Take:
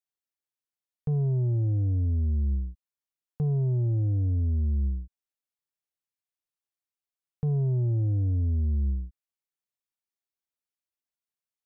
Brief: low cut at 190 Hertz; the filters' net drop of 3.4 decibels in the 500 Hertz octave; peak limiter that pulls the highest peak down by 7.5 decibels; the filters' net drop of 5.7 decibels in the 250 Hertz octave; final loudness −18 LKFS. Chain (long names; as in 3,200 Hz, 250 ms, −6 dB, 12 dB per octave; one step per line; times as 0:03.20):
high-pass filter 190 Hz
parametric band 250 Hz −3 dB
parametric band 500 Hz −3 dB
level +23 dB
brickwall limiter −10.5 dBFS